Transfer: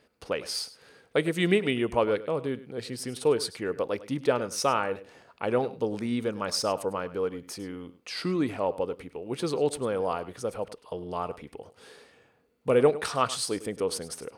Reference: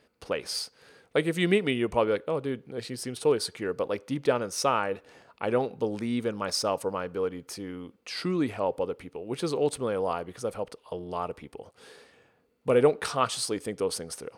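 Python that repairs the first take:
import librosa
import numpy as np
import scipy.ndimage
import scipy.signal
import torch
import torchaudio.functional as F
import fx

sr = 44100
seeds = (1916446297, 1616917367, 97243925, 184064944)

y = fx.fix_echo_inverse(x, sr, delay_ms=102, level_db=-16.5)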